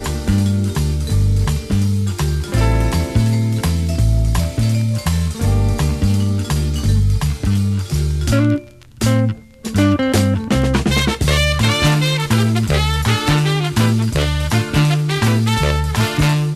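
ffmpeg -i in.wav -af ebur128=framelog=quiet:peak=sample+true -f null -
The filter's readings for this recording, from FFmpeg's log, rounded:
Integrated loudness:
  I:         -16.8 LUFS
  Threshold: -26.8 LUFS
Loudness range:
  LRA:         2.3 LU
  Threshold: -36.8 LUFS
  LRA low:   -17.8 LUFS
  LRA high:  -15.5 LUFS
Sample peak:
  Peak:       -3.0 dBFS
True peak:
  Peak:       -3.0 dBFS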